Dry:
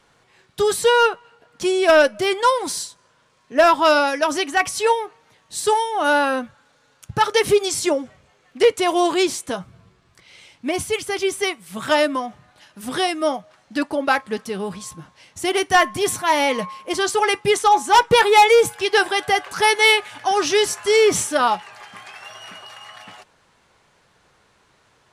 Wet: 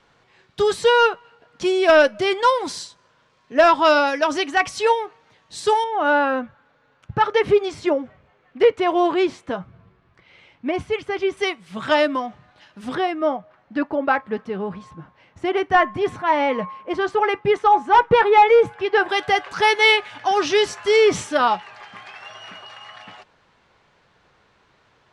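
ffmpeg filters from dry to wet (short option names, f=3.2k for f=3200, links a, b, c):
-af "asetnsamples=n=441:p=0,asendcmd='5.84 lowpass f 2300;11.37 lowpass f 4200;12.95 lowpass f 1900;19.09 lowpass f 4400',lowpass=5.1k"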